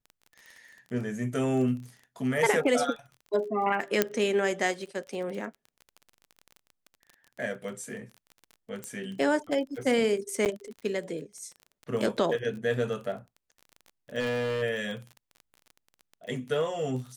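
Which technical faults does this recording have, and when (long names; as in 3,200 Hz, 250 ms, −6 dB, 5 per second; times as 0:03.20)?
surface crackle 24 per second −37 dBFS
0:04.02: click −7 dBFS
0:08.84: click −21 dBFS
0:10.45–0:10.46: drop-out 8.8 ms
0:14.19–0:14.63: clipping −26.5 dBFS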